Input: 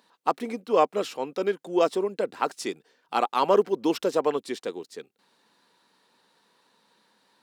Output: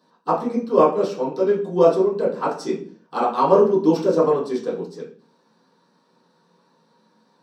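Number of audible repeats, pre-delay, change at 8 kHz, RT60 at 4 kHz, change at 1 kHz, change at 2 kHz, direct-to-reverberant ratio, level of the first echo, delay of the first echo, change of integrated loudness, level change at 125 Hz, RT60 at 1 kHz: no echo audible, 3 ms, can't be measured, 0.40 s, +4.5 dB, −1.5 dB, −11.0 dB, no echo audible, no echo audible, +6.5 dB, +13.5 dB, 0.45 s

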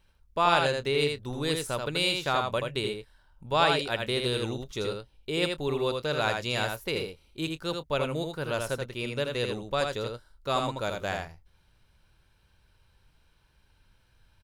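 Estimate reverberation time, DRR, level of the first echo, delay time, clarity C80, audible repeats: no reverb audible, no reverb audible, −4.5 dB, 81 ms, no reverb audible, 1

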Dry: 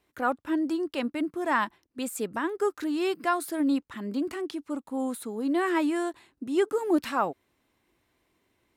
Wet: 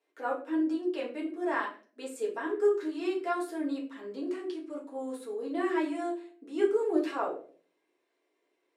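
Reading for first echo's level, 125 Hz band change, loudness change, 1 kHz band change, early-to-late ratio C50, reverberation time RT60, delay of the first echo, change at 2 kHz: no echo audible, can't be measured, −3.5 dB, −6.0 dB, 9.0 dB, 0.45 s, no echo audible, −5.5 dB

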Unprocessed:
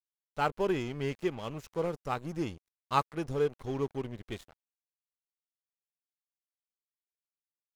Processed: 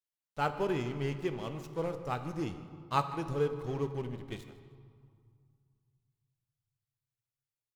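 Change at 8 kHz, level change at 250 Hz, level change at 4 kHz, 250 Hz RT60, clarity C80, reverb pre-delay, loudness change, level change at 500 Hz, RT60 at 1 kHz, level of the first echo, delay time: −2.0 dB, −1.5 dB, −2.0 dB, 2.5 s, 11.0 dB, 7 ms, −1.5 dB, −2.0 dB, 2.4 s, −18.0 dB, 157 ms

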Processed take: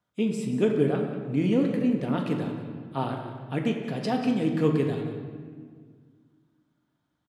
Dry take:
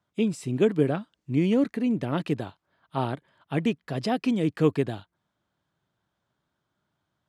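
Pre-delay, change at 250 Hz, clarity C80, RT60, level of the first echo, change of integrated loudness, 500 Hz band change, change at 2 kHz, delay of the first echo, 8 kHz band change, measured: 4 ms, +0.5 dB, 5.5 dB, 1.8 s, −13.5 dB, −0.5 dB, 0.0 dB, −1.0 dB, 184 ms, can't be measured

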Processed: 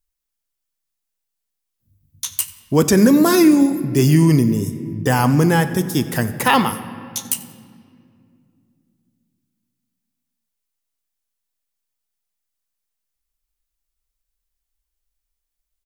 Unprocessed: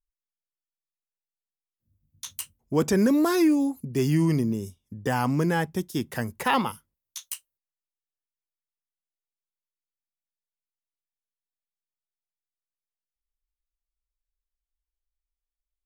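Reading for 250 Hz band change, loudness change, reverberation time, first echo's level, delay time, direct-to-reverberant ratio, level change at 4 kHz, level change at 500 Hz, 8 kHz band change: +9.0 dB, +8.5 dB, 2.4 s, −20.5 dB, 91 ms, 10.5 dB, +10.0 dB, +8.0 dB, +12.5 dB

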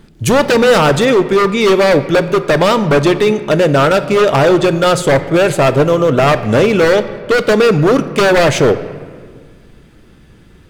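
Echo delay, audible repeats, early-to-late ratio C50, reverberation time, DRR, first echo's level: no echo audible, no echo audible, 12.5 dB, 1.7 s, 11.0 dB, no echo audible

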